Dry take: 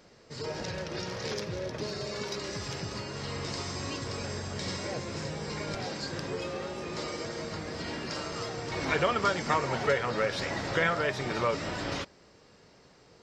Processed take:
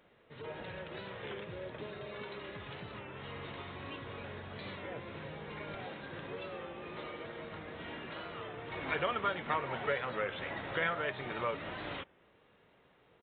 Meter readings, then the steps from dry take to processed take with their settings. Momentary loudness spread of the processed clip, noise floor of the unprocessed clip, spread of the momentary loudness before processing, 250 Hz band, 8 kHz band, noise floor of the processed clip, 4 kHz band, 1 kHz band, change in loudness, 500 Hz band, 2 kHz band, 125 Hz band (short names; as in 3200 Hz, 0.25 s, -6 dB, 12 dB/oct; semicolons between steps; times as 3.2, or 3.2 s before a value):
11 LU, -58 dBFS, 9 LU, -9.0 dB, under -40 dB, -66 dBFS, -10.0 dB, -6.0 dB, -7.0 dB, -7.5 dB, -5.5 dB, -10.0 dB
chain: low shelf 470 Hz -5.5 dB; downsampling 8000 Hz; record warp 33 1/3 rpm, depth 100 cents; gain -5 dB